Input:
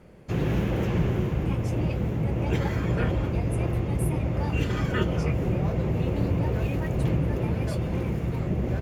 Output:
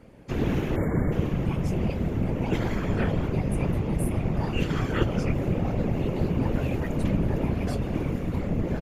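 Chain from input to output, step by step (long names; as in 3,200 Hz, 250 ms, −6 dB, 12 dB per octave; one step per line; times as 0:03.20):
random phases in short frames
time-frequency box erased 0:00.76–0:01.12, 2,300–6,900 Hz
downsampling to 32,000 Hz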